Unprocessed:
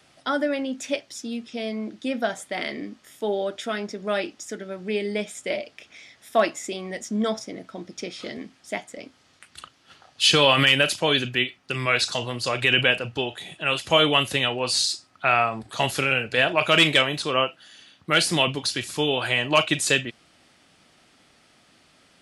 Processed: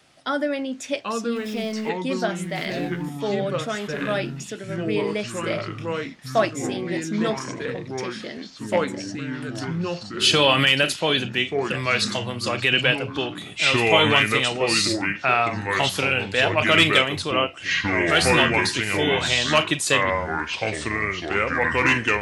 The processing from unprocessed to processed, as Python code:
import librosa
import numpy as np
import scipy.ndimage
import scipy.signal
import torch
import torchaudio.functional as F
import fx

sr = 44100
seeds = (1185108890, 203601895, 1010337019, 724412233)

y = fx.zero_step(x, sr, step_db=-37.5, at=(1.36, 1.89))
y = fx.echo_pitch(y, sr, ms=718, semitones=-4, count=3, db_per_echo=-3.0)